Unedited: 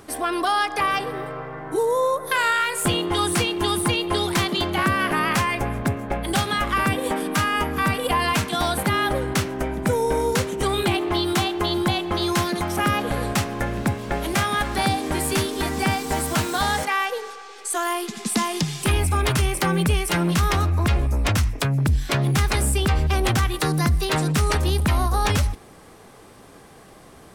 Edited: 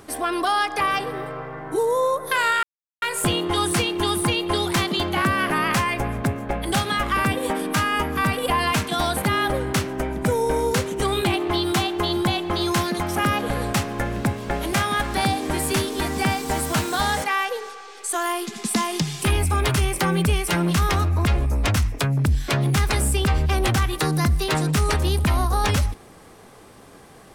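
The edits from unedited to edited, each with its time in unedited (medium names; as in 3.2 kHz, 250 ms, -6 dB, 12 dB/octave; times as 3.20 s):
2.63 s: insert silence 0.39 s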